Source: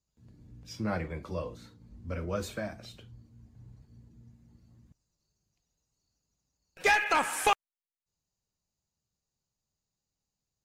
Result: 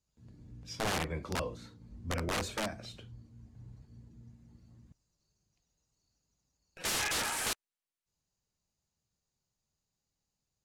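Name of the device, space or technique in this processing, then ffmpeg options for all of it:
overflowing digital effects unit: -af "aeval=exprs='(mod(23.7*val(0)+1,2)-1)/23.7':channel_layout=same,lowpass=11000,volume=1dB"

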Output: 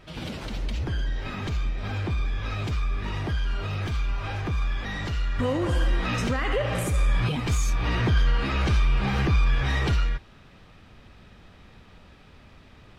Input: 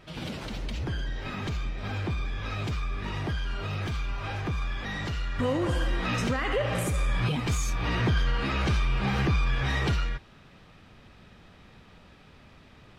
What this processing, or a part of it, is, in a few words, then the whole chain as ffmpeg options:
low shelf boost with a cut just above: -af "lowshelf=frequency=110:gain=5,equalizer=frequency=150:width_type=o:width=0.77:gain=-2.5,volume=1dB"

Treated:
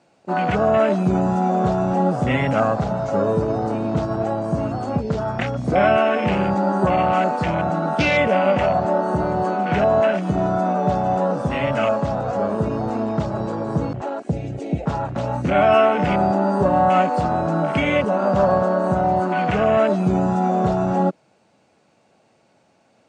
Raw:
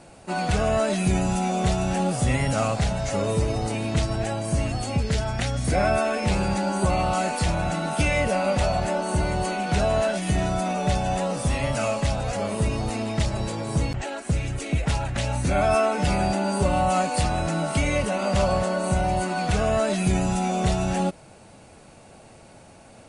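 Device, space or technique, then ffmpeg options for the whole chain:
over-cleaned archive recording: -af "highpass=160,lowpass=7300,lowpass=frequency=8200:width=0.5412,lowpass=frequency=8200:width=1.3066,afwtdn=0.0282,volume=6.5dB"

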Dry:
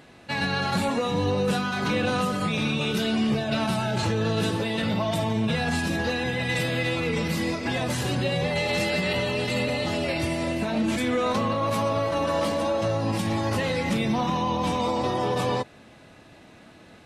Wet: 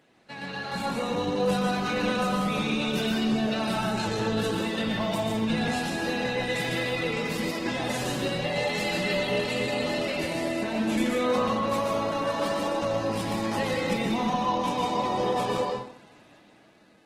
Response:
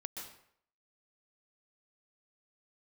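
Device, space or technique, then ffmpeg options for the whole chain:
far-field microphone of a smart speaker: -filter_complex "[1:a]atrim=start_sample=2205[link_01];[0:a][link_01]afir=irnorm=-1:irlink=0,highpass=150,dynaudnorm=framelen=170:gausssize=11:maxgain=7dB,volume=-6.5dB" -ar 48000 -c:a libopus -b:a 16k

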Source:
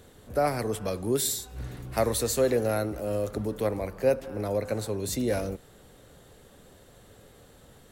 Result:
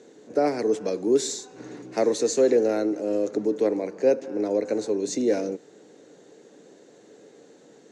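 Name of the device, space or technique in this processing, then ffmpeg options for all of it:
television speaker: -filter_complex "[0:a]highpass=frequency=180:width=0.5412,highpass=frequency=180:width=1.3066,equalizer=frequency=310:width_type=q:width=4:gain=10,equalizer=frequency=440:width_type=q:width=4:gain=8,equalizer=frequency=1200:width_type=q:width=4:gain=-7,equalizer=frequency=3200:width_type=q:width=4:gain=-6,equalizer=frequency=6500:width_type=q:width=4:gain=9,lowpass=frequency=6800:width=0.5412,lowpass=frequency=6800:width=1.3066,asettb=1/sr,asplit=3[link_01][link_02][link_03];[link_01]atrim=end=1.184[link_04];[link_02]atrim=start=1.18:end=1.83,asetpts=PTS-STARTPTS,afade=type=in:duration=0.004:curve=qsin,afade=type=out:start_time=0.646:duration=0.004:curve=qsin,equalizer=frequency=1100:width=1.5:gain=5.5[link_05];[link_03]atrim=start=1.826[link_06];[link_04][link_05]acrossfade=duration=0.004:curve1=hsin:curve2=qsin[link_07];[link_07][link_06]acrossfade=duration=0.004:curve1=qsin:curve2=hsin"

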